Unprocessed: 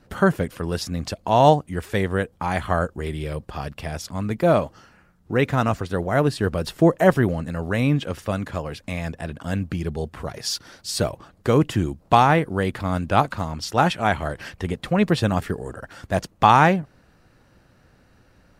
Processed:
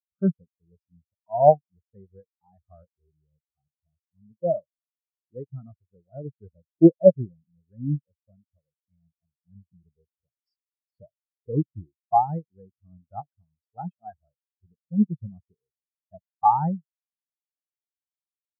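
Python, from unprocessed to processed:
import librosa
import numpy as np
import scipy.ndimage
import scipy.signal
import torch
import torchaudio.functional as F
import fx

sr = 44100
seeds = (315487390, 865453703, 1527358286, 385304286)

y = fx.spectral_expand(x, sr, expansion=4.0)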